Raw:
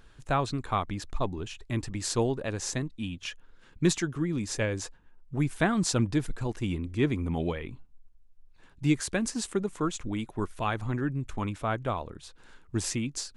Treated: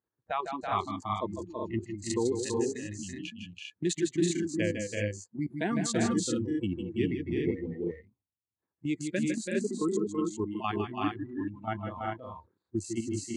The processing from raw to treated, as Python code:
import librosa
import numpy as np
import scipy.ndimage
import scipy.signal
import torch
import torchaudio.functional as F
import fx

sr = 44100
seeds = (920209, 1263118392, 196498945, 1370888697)

y = fx.wiener(x, sr, points=15)
y = fx.noise_reduce_blind(y, sr, reduce_db=24)
y = fx.peak_eq(y, sr, hz=240.0, db=-3.5, octaves=2.7)
y = fx.level_steps(y, sr, step_db=11)
y = fx.cabinet(y, sr, low_hz=100.0, low_slope=24, high_hz=8400.0, hz=(140.0, 350.0, 1500.0, 5300.0), db=(-6, 5, -6, -10))
y = fx.echo_multitap(y, sr, ms=(153, 159, 331, 370, 399), db=(-9.5, -10.0, -5.0, -4.5, -4.5))
y = y * librosa.db_to_amplitude(4.0)